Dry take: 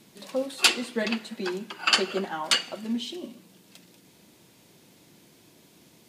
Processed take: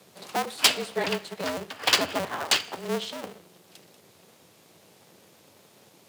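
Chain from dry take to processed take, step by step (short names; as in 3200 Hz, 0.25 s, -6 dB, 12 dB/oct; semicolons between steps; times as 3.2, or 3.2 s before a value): cycle switcher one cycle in 2, inverted; frequency shift +83 Hz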